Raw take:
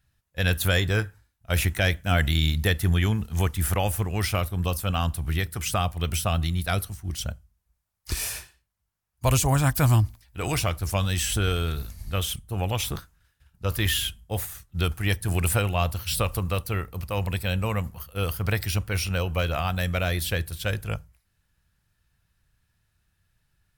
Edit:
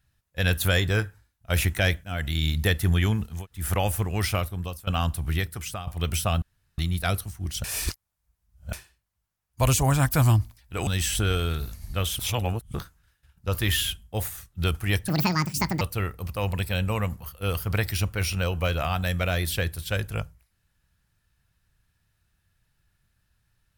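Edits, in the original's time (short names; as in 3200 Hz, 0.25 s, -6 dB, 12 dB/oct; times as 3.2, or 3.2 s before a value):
2.04–2.61 fade in, from -14 dB
3.35–3.62 room tone, crossfade 0.24 s
4.33–4.87 fade out, to -18 dB
5.38–5.87 fade out, to -15.5 dB
6.42 insert room tone 0.36 s
7.28–8.37 reverse
10.51–11.04 cut
12.36–12.91 reverse
15.25–16.55 speed 178%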